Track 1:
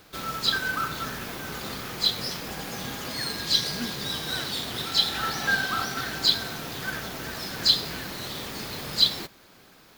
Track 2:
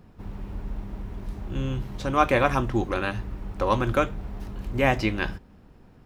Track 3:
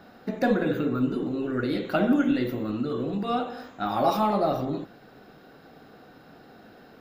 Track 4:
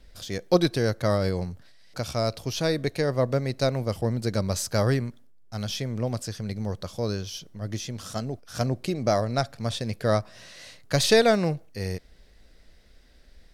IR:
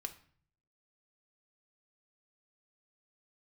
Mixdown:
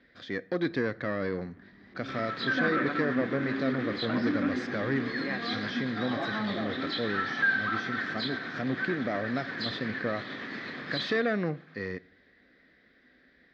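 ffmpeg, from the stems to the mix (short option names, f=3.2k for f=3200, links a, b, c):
-filter_complex "[0:a]tremolo=f=8.6:d=0.28,adelay=1950,volume=-0.5dB[a];[1:a]adelay=450,volume=-12.5dB[b];[2:a]adelay=2150,volume=-7dB[c];[3:a]alimiter=limit=-15dB:level=0:latency=1:release=81,volume=-1dB,asplit=2[d][e];[e]volume=-8dB[f];[4:a]atrim=start_sample=2205[g];[f][g]afir=irnorm=-1:irlink=0[h];[a][b][c][d][h]amix=inputs=5:normalize=0,asoftclip=type=tanh:threshold=-20dB,highpass=210,equalizer=f=260:t=q:w=4:g=6,equalizer=f=430:t=q:w=4:g=-3,equalizer=f=620:t=q:w=4:g=-4,equalizer=f=870:t=q:w=4:g=-9,equalizer=f=1.8k:t=q:w=4:g=9,equalizer=f=2.8k:t=q:w=4:g=-9,lowpass=f=3.3k:w=0.5412,lowpass=f=3.3k:w=1.3066"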